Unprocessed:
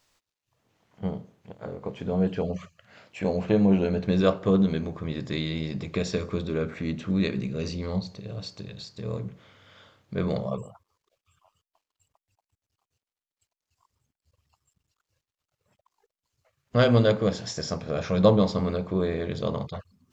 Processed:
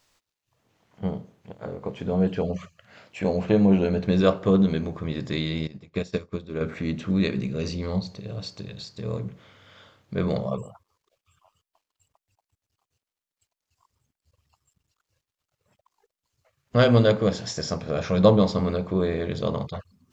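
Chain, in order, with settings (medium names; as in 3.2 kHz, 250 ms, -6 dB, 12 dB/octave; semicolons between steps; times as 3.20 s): 5.67–6.61 s: upward expansion 2.5:1, over -41 dBFS; trim +2 dB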